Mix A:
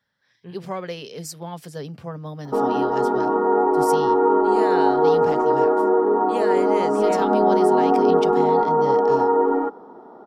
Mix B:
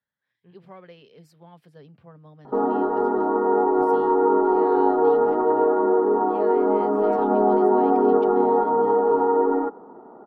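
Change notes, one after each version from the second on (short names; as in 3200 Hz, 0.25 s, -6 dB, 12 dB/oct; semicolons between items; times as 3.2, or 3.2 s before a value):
speech: add pre-emphasis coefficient 0.8; master: add air absorption 480 m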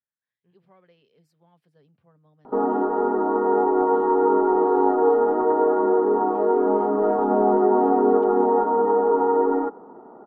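speech -12.0 dB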